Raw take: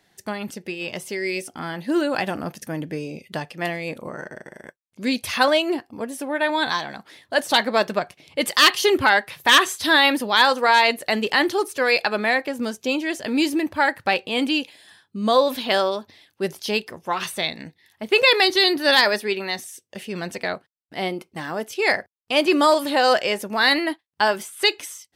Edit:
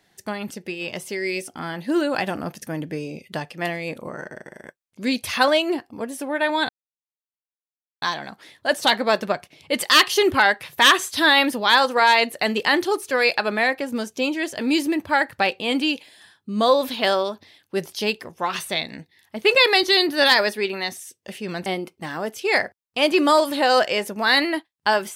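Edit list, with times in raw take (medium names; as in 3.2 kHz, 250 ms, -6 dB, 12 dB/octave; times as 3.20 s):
6.69 s: insert silence 1.33 s
20.33–21.00 s: delete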